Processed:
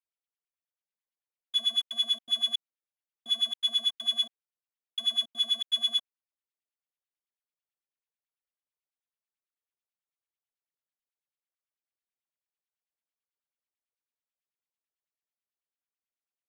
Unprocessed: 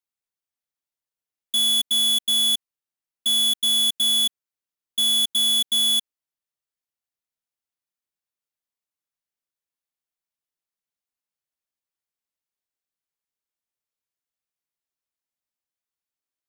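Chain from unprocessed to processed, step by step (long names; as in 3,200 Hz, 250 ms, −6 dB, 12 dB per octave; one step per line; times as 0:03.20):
auto-filter band-pass sine 9.1 Hz 430–3,100 Hz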